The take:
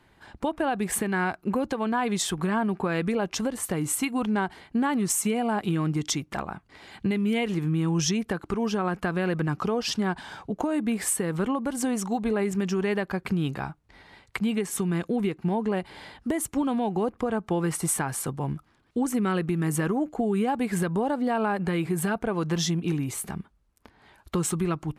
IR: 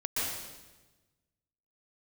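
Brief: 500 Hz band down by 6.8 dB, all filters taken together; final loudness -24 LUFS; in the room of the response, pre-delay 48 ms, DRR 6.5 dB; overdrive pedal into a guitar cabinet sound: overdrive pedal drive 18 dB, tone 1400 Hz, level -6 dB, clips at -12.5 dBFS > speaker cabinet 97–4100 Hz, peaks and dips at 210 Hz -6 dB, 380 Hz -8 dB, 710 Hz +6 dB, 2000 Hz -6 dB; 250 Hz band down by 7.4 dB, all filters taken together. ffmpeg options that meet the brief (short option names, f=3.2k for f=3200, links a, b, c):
-filter_complex "[0:a]equalizer=f=250:t=o:g=-3.5,equalizer=f=500:t=o:g=-6.5,asplit=2[a][b];[1:a]atrim=start_sample=2205,adelay=48[c];[b][c]afir=irnorm=-1:irlink=0,volume=-13.5dB[d];[a][d]amix=inputs=2:normalize=0,asplit=2[e][f];[f]highpass=f=720:p=1,volume=18dB,asoftclip=type=tanh:threshold=-12.5dB[g];[e][g]amix=inputs=2:normalize=0,lowpass=f=1.4k:p=1,volume=-6dB,highpass=97,equalizer=f=210:t=q:w=4:g=-6,equalizer=f=380:t=q:w=4:g=-8,equalizer=f=710:t=q:w=4:g=6,equalizer=f=2k:t=q:w=4:g=-6,lowpass=f=4.1k:w=0.5412,lowpass=f=4.1k:w=1.3066,volume=3.5dB"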